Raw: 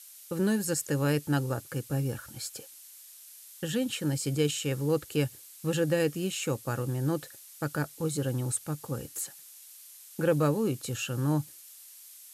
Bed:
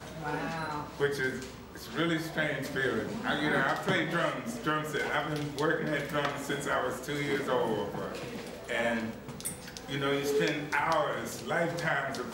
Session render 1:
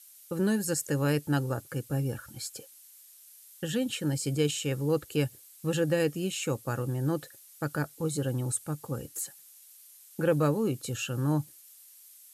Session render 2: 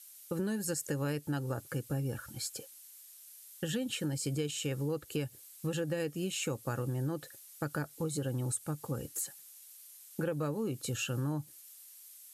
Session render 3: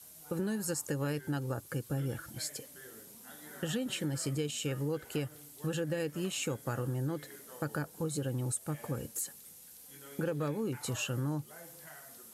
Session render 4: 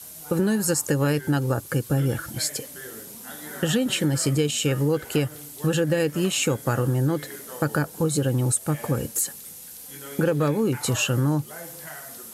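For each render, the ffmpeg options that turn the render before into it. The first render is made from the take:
ffmpeg -i in.wav -af "afftdn=noise_reduction=6:noise_floor=-51" out.wav
ffmpeg -i in.wav -af "acompressor=threshold=-31dB:ratio=6" out.wav
ffmpeg -i in.wav -i bed.wav -filter_complex "[1:a]volume=-23dB[link_01];[0:a][link_01]amix=inputs=2:normalize=0" out.wav
ffmpeg -i in.wav -af "volume=12dB" out.wav

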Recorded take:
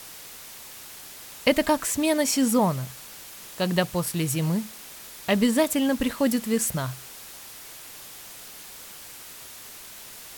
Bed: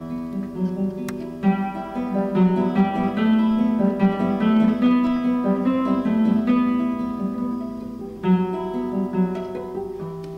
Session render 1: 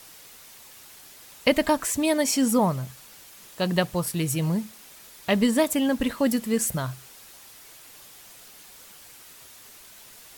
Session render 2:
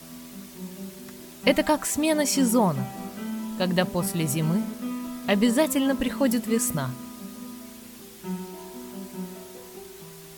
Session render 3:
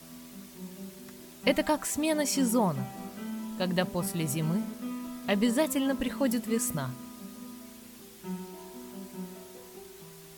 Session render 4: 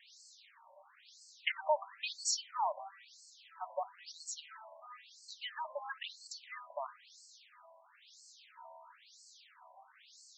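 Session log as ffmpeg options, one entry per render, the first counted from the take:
ffmpeg -i in.wav -af "afftdn=noise_reduction=6:noise_floor=-43" out.wav
ffmpeg -i in.wav -i bed.wav -filter_complex "[1:a]volume=-14.5dB[link_01];[0:a][link_01]amix=inputs=2:normalize=0" out.wav
ffmpeg -i in.wav -af "volume=-5dB" out.wav
ffmpeg -i in.wav -af "asoftclip=type=tanh:threshold=-17dB,afftfilt=real='re*between(b*sr/1024,760*pow(6000/760,0.5+0.5*sin(2*PI*1*pts/sr))/1.41,760*pow(6000/760,0.5+0.5*sin(2*PI*1*pts/sr))*1.41)':imag='im*between(b*sr/1024,760*pow(6000/760,0.5+0.5*sin(2*PI*1*pts/sr))/1.41,760*pow(6000/760,0.5+0.5*sin(2*PI*1*pts/sr))*1.41)':win_size=1024:overlap=0.75" out.wav

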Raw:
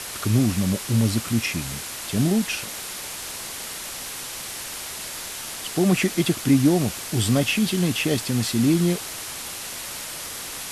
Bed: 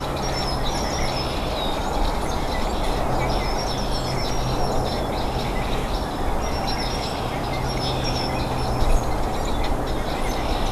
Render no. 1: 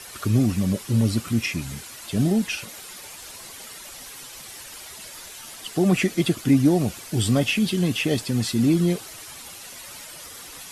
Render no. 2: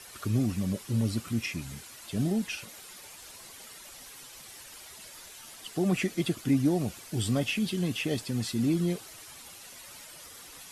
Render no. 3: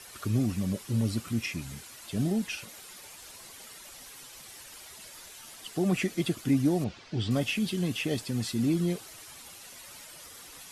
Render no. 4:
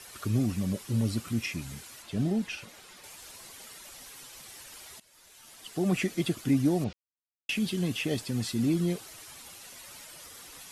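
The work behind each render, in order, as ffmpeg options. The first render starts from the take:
ffmpeg -i in.wav -af "afftdn=noise_reduction=10:noise_floor=-34" out.wav
ffmpeg -i in.wav -af "volume=-7.5dB" out.wav
ffmpeg -i in.wav -filter_complex "[0:a]asettb=1/sr,asplit=3[link_01][link_02][link_03];[link_01]atrim=end=6.844[link_04];[link_02]atrim=start=6.84:end=7.31,asetpts=PTS-STARTPTS,afade=type=in:duration=0.004:curve=qsin,afade=type=out:start_time=0.466:duration=0.004:curve=qsin,lowpass=frequency=5000:width=0.5412,lowpass=frequency=5000:width=1.3066[link_05];[link_03]atrim=start=7.306[link_06];[link_04][link_05]acrossfade=duration=0.004:curve1=hsin:curve2=qsin[link_07];[link_07][link_06]acrossfade=duration=0.004:curve1=qsin:curve2=hsin" out.wav
ffmpeg -i in.wav -filter_complex "[0:a]asettb=1/sr,asplit=3[link_01][link_02][link_03];[link_01]atrim=end=2.024[link_04];[link_02]atrim=start=2.02:end=3.04,asetpts=PTS-STARTPTS,afade=type=in:duration=0.004:curve=qsin,afade=type=out:start_time=1.016:duration=0.004:curve=qsin,highshelf=frequency=6900:gain=-11[link_05];[link_03]atrim=start=3.036[link_06];[link_04][link_05]acrossfade=duration=0.004:curve1=hsin:curve2=qsin[link_07];[link_07][link_06]acrossfade=duration=0.004:curve1=qsin:curve2=hsin,asplit=4[link_08][link_09][link_10][link_11];[link_08]atrim=end=5,asetpts=PTS-STARTPTS,afade=type=out:start_time=4.996:duration=0.004:curve=hsin:silence=0.105925[link_12];[link_09]atrim=start=5:end=6.93,asetpts=PTS-STARTPTS,afade=type=in:duration=0.92:silence=0.105925,afade=type=out:start_time=1.926:duration=0.004:curve=hsin[link_13];[link_10]atrim=start=6.93:end=7.49,asetpts=PTS-STARTPTS,volume=0[link_14];[link_11]atrim=start=7.49,asetpts=PTS-STARTPTS,afade=type=in:duration=0.004:curve=hsin[link_15];[link_12][link_13][link_14][link_15]concat=n=4:v=0:a=1" out.wav

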